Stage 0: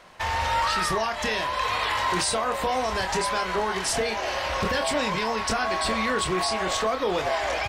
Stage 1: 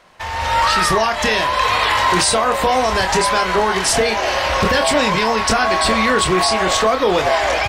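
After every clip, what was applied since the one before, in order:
automatic gain control gain up to 10 dB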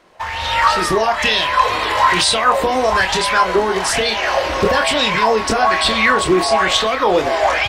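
auto-filter bell 1.1 Hz 300–3,700 Hz +12 dB
level −3.5 dB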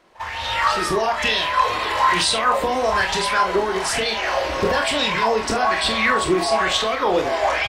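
double-tracking delay 45 ms −9 dB
echo ahead of the sound 48 ms −19 dB
level −5 dB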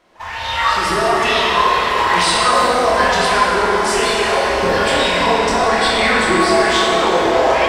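dense smooth reverb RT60 4.2 s, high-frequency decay 0.6×, DRR −5 dB
level −1 dB

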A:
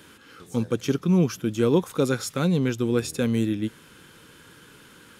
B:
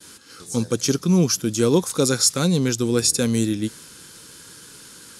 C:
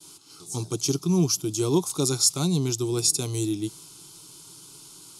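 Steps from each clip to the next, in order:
flat-topped bell 6,800 Hz +13.5 dB; downward expander −43 dBFS; level +2.5 dB
phaser with its sweep stopped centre 340 Hz, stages 8; level −2 dB

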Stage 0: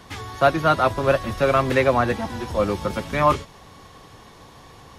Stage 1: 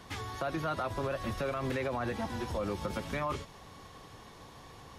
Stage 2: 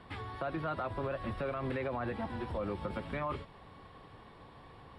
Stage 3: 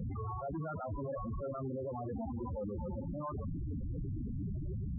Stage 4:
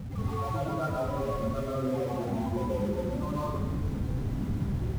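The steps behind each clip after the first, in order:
brickwall limiter −16 dBFS, peak gain reduction 11.5 dB; downward compressor 2 to 1, threshold −27 dBFS, peak gain reduction 4 dB; level −5.5 dB
moving average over 7 samples; level −2 dB
comparator with hysteresis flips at −52 dBFS; echo through a band-pass that steps 470 ms, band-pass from 220 Hz, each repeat 0.7 octaves, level −9 dB; spectral peaks only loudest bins 8; level +3 dB
tuned comb filter 130 Hz, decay 1.2 s, harmonics all, mix 30%; in parallel at −10 dB: bit reduction 7 bits; on the sum: dense smooth reverb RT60 1.1 s, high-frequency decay 0.6×, pre-delay 115 ms, DRR −7 dB

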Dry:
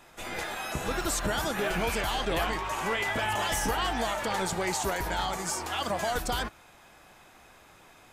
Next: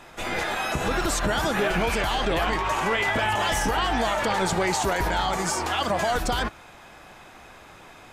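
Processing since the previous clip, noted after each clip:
high-shelf EQ 7,700 Hz −9.5 dB
brickwall limiter −24 dBFS, peak gain reduction 6 dB
level +8.5 dB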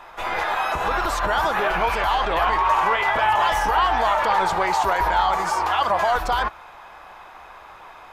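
graphic EQ with 10 bands 125 Hz −8 dB, 250 Hz −8 dB, 1,000 Hz +10 dB, 8,000 Hz −9 dB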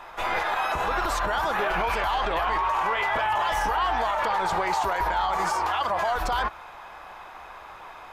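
brickwall limiter −17 dBFS, peak gain reduction 8.5 dB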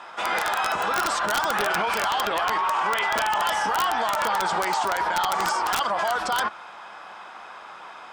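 loudspeaker in its box 180–9,900 Hz, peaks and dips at 210 Hz +6 dB, 1,400 Hz +5 dB, 3,200 Hz +5 dB, 5,100 Hz +6 dB, 8,200 Hz +6 dB
wrap-around overflow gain 15 dB

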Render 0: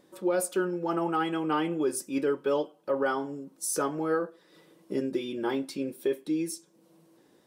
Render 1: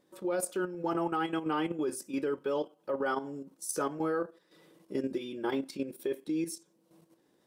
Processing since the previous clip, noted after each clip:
output level in coarse steps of 10 dB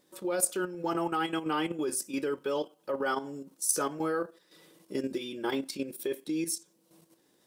high-shelf EQ 2,600 Hz +9.5 dB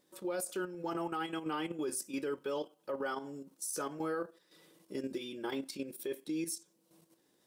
brickwall limiter −23.5 dBFS, peak gain reduction 11.5 dB
level −4.5 dB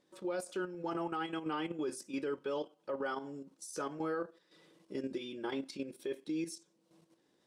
high-frequency loss of the air 68 metres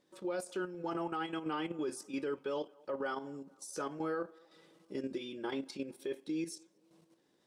feedback echo with a band-pass in the loop 225 ms, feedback 58%, band-pass 780 Hz, level −24 dB

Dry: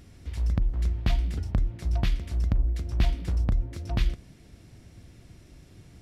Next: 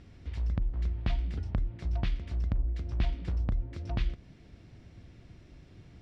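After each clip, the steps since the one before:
low-pass filter 4,200 Hz 12 dB per octave
in parallel at −1 dB: downward compressor, threshold −31 dBFS, peak gain reduction 13 dB
on the sum: level −7.5 dB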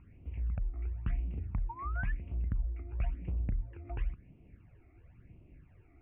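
elliptic low-pass filter 2,600 Hz, stop band 40 dB
sound drawn into the spectrogram rise, 0:01.69–0:02.12, 900–1,800 Hz −35 dBFS
all-pass phaser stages 12, 0.97 Hz, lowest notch 160–1,700 Hz
level −3.5 dB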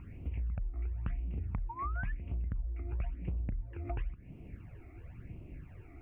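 downward compressor 5 to 1, threshold −43 dBFS, peak gain reduction 14 dB
level +9 dB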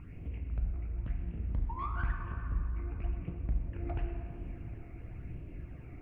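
soft clipping −29 dBFS, distortion −21 dB
rectangular room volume 170 cubic metres, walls hard, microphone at 0.39 metres
highs frequency-modulated by the lows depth 0.29 ms

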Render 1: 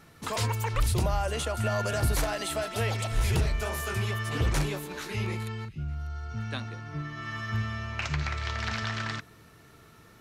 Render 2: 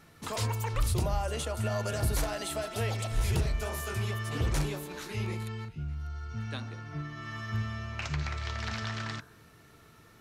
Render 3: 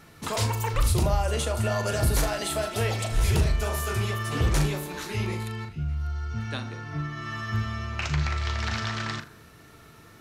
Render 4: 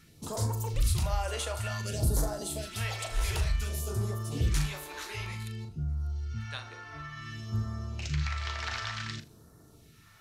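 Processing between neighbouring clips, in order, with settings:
hum removal 63.97 Hz, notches 26; dynamic equaliser 2,000 Hz, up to −3 dB, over −43 dBFS, Q 0.73; level −2 dB
flutter between parallel walls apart 6.8 metres, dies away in 0.25 s; level +5.5 dB
all-pass phaser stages 2, 0.55 Hz, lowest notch 160–2,500 Hz; level −4.5 dB

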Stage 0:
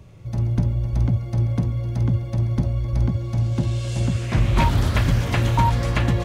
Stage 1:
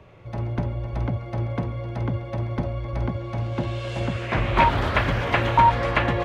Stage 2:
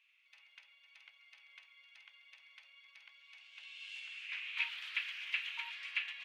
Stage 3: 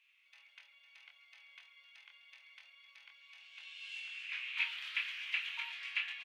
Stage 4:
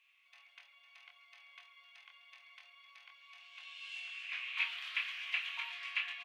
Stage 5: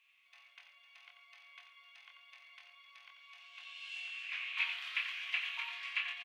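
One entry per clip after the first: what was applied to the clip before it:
three-way crossover with the lows and the highs turned down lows −13 dB, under 370 Hz, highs −20 dB, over 3,200 Hz; level +6 dB
four-pole ladder high-pass 2,300 Hz, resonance 60%; level −5 dB
double-tracking delay 24 ms −5 dB
hollow resonant body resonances 720/1,100 Hz, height 12 dB, ringing for 45 ms
single-tap delay 89 ms −9 dB

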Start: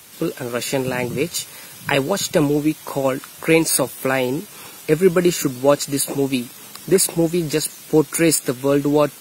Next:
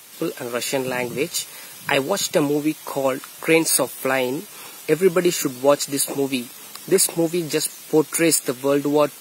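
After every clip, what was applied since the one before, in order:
high-pass filter 290 Hz 6 dB per octave
notch filter 1,500 Hz, Q 28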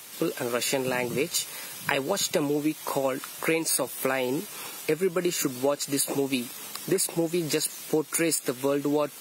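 downward compressor 6 to 1, threshold −22 dBFS, peak gain reduction 11.5 dB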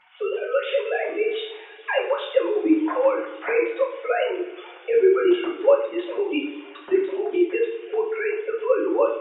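three sine waves on the formant tracks
coupled-rooms reverb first 0.48 s, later 2.1 s, from −18 dB, DRR −5.5 dB

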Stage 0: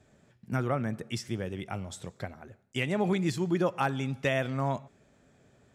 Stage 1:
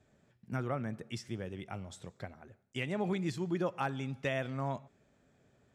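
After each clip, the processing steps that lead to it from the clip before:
high-shelf EQ 11,000 Hz −9 dB
level −6 dB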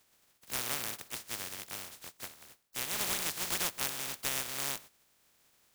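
compressing power law on the bin magnitudes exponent 0.1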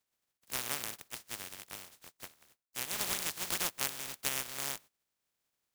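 power curve on the samples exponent 1.4
level +5 dB

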